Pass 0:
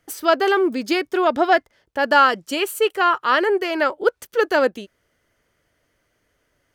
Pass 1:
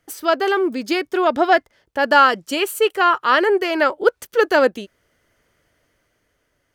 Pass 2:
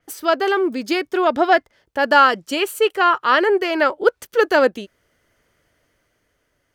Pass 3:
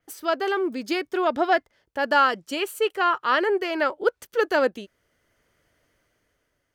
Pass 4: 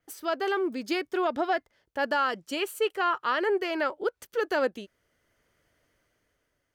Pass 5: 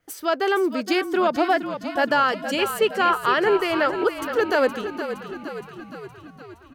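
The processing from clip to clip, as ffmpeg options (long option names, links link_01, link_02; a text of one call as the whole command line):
ffmpeg -i in.wav -af "dynaudnorm=framelen=200:gausssize=11:maxgain=11.5dB,volume=-1dB" out.wav
ffmpeg -i in.wav -af "adynamicequalizer=threshold=0.0126:dfrequency=6600:dqfactor=0.7:tfrequency=6600:tqfactor=0.7:attack=5:release=100:ratio=0.375:range=2:mode=cutabove:tftype=highshelf" out.wav
ffmpeg -i in.wav -af "dynaudnorm=framelen=300:gausssize=5:maxgain=4dB,volume=-6.5dB" out.wav
ffmpeg -i in.wav -af "alimiter=limit=-14dB:level=0:latency=1:release=125,volume=-3dB" out.wav
ffmpeg -i in.wav -filter_complex "[0:a]asplit=8[link_01][link_02][link_03][link_04][link_05][link_06][link_07][link_08];[link_02]adelay=467,afreqshift=-39,volume=-10dB[link_09];[link_03]adelay=934,afreqshift=-78,volume=-14.3dB[link_10];[link_04]adelay=1401,afreqshift=-117,volume=-18.6dB[link_11];[link_05]adelay=1868,afreqshift=-156,volume=-22.9dB[link_12];[link_06]adelay=2335,afreqshift=-195,volume=-27.2dB[link_13];[link_07]adelay=2802,afreqshift=-234,volume=-31.5dB[link_14];[link_08]adelay=3269,afreqshift=-273,volume=-35.8dB[link_15];[link_01][link_09][link_10][link_11][link_12][link_13][link_14][link_15]amix=inputs=8:normalize=0,volume=6.5dB" out.wav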